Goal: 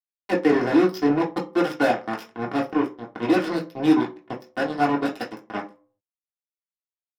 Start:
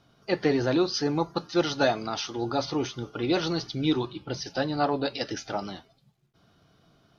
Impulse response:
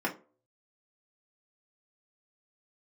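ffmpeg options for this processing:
-filter_complex "[0:a]acrusher=bits=3:mix=0:aa=0.5[a];[1:a]atrim=start_sample=2205[b];[a][b]afir=irnorm=-1:irlink=0,volume=-5.5dB"

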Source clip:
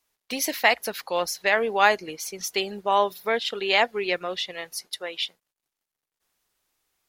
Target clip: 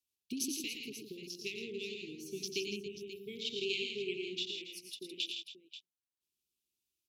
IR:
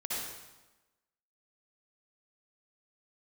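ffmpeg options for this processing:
-af "afwtdn=0.0224,highpass=44,acompressor=threshold=-42dB:ratio=2.5,asuperstop=centerf=1000:order=20:qfactor=0.5,aecho=1:1:90|112|163|280|535:0.335|0.473|0.422|0.211|0.224,volume=2.5dB"

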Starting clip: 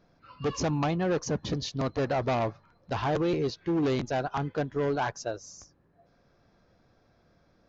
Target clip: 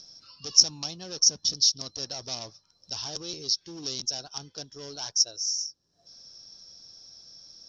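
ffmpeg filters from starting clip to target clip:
-af "aexciter=amount=8.6:drive=4:freq=3.1k,acompressor=mode=upward:threshold=-37dB:ratio=2.5,lowpass=f=5.5k:t=q:w=16,volume=-15.5dB"

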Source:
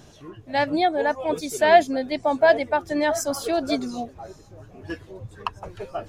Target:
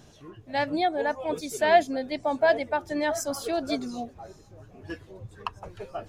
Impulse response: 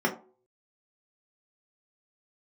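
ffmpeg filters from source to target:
-filter_complex "[0:a]asplit=2[a][b];[1:a]atrim=start_sample=2205[c];[b][c]afir=irnorm=-1:irlink=0,volume=-34dB[d];[a][d]amix=inputs=2:normalize=0,volume=-4dB"

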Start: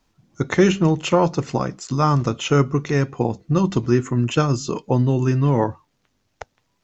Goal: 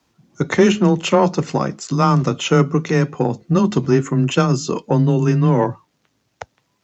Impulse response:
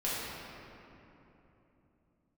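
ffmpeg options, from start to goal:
-filter_complex "[0:a]asplit=2[a][b];[b]acontrast=67,volume=2.5dB[c];[a][c]amix=inputs=2:normalize=0,highpass=65,afreqshift=16,volume=-8dB"

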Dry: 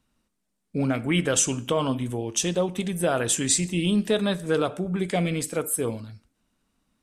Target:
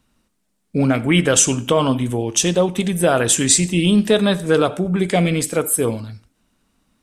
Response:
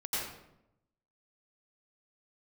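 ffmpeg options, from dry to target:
-filter_complex "[0:a]asplit=2[a][b];[1:a]atrim=start_sample=2205,atrim=end_sample=4410[c];[b][c]afir=irnorm=-1:irlink=0,volume=-22dB[d];[a][d]amix=inputs=2:normalize=0,volume=7.5dB"

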